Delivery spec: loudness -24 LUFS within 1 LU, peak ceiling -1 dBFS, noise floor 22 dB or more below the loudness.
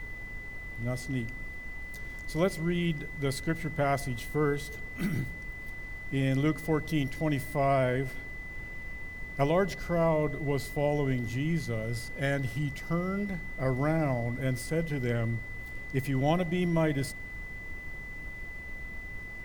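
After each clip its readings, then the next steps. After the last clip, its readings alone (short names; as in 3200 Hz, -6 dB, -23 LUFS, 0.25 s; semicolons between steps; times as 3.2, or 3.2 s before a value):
steady tone 2000 Hz; tone level -41 dBFS; noise floor -42 dBFS; noise floor target -54 dBFS; loudness -32.0 LUFS; peak -12.5 dBFS; loudness target -24.0 LUFS
-> notch 2000 Hz, Q 30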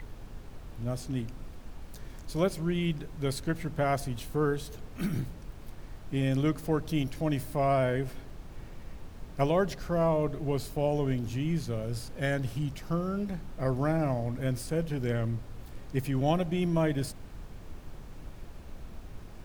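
steady tone none; noise floor -46 dBFS; noise floor target -53 dBFS
-> noise print and reduce 7 dB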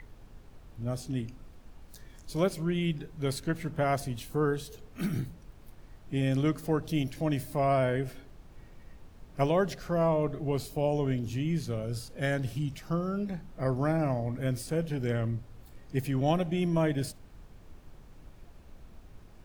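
noise floor -53 dBFS; loudness -31.0 LUFS; peak -12.5 dBFS; loudness target -24.0 LUFS
-> gain +7 dB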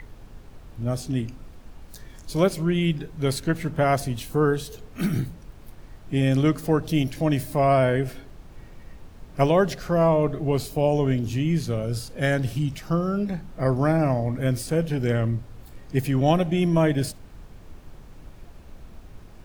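loudness -24.0 LUFS; peak -5.5 dBFS; noise floor -46 dBFS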